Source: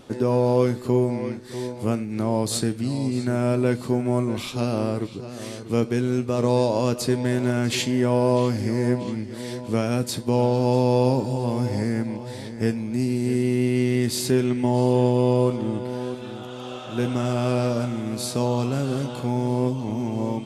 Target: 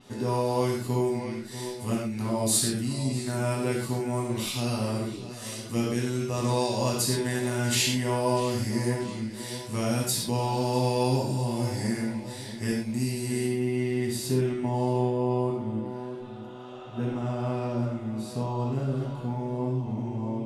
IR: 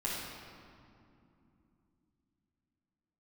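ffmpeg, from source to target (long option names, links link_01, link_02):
-filter_complex "[0:a]asetnsamples=nb_out_samples=441:pad=0,asendcmd='13.46 highshelf g -3;15.01 highshelf g -10',highshelf=frequency=2300:gain=9.5[link_01];[1:a]atrim=start_sample=2205,afade=type=out:start_time=0.18:duration=0.01,atrim=end_sample=8379[link_02];[link_01][link_02]afir=irnorm=-1:irlink=0,adynamicequalizer=threshold=0.0126:dfrequency=6700:dqfactor=0.7:tfrequency=6700:tqfactor=0.7:attack=5:release=100:ratio=0.375:range=2.5:mode=boostabove:tftype=highshelf,volume=-8.5dB"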